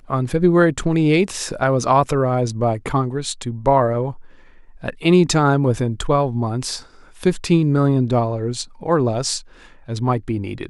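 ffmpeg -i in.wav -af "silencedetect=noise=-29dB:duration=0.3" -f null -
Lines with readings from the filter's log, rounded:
silence_start: 4.12
silence_end: 4.83 | silence_duration: 0.72
silence_start: 6.80
silence_end: 7.22 | silence_duration: 0.41
silence_start: 9.40
silence_end: 9.88 | silence_duration: 0.49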